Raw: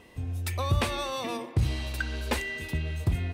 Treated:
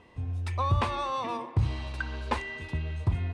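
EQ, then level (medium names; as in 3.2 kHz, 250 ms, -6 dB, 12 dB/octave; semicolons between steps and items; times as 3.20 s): distance through air 120 m; dynamic bell 1 kHz, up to +5 dB, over -49 dBFS, Q 2.2; fifteen-band graphic EQ 100 Hz +5 dB, 1 kHz +6 dB, 10 kHz +7 dB; -3.5 dB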